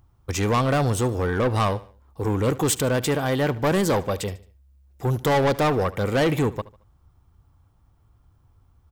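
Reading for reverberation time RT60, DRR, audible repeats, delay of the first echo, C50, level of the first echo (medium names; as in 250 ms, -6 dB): no reverb, no reverb, 2, 74 ms, no reverb, -19.0 dB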